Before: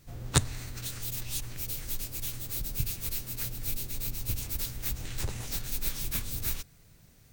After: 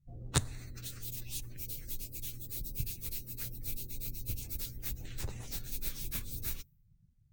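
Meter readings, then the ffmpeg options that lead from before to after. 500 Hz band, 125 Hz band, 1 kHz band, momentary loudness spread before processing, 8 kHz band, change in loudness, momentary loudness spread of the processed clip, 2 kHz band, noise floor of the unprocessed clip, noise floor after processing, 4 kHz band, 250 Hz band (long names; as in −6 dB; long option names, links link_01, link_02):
−6.0 dB, −5.5 dB, −6.5 dB, 6 LU, −6.5 dB, −6.0 dB, 7 LU, −7.0 dB, −58 dBFS, −67 dBFS, −6.5 dB, −5.5 dB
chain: -af "afftdn=noise_reduction=27:noise_floor=-48,volume=-5.5dB"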